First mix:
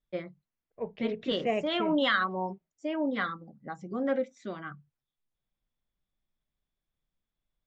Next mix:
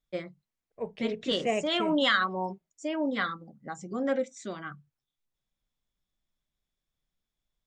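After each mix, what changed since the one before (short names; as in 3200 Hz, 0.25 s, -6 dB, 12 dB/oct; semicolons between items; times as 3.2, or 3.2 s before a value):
master: remove air absorption 190 m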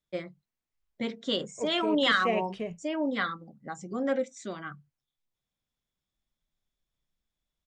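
second voice: entry +0.80 s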